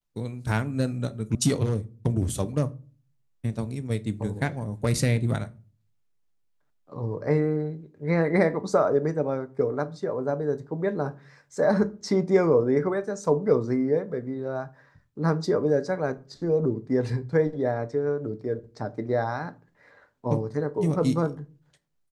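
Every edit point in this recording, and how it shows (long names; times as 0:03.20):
0:01.35: cut off before it has died away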